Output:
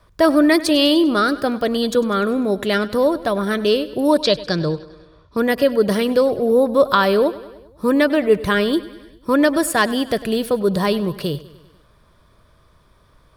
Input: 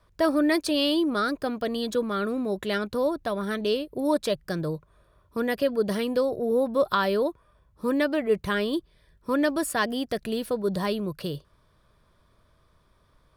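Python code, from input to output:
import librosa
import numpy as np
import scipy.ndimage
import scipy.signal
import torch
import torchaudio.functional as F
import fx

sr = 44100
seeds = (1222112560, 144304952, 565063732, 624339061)

y = fx.lowpass_res(x, sr, hz=4600.0, q=2.7, at=(4.21, 5.37))
y = fx.echo_feedback(y, sr, ms=99, feedback_pct=60, wet_db=-18)
y = y * 10.0 ** (8.5 / 20.0)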